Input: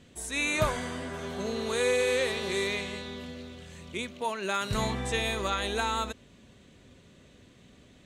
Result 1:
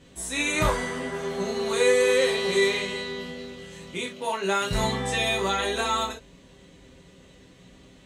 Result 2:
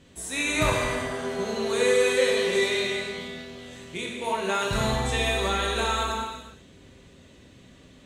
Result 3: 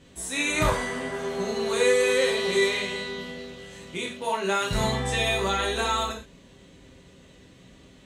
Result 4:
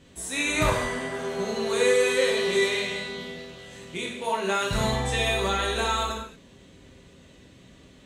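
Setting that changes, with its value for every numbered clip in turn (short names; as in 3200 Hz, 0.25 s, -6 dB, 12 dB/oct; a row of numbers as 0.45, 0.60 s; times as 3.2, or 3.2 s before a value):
non-linear reverb, gate: 90, 510, 150, 260 ms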